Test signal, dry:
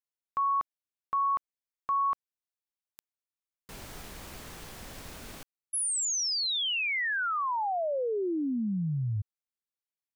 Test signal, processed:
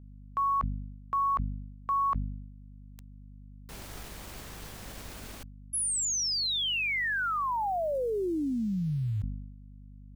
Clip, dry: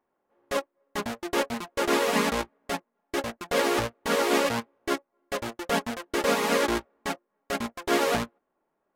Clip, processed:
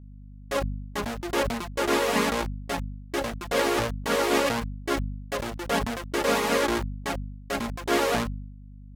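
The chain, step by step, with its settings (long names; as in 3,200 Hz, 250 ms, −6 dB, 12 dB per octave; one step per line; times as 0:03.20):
centre clipping without the shift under −48 dBFS
mains hum 50 Hz, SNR 17 dB
level that may fall only so fast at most 55 dB per second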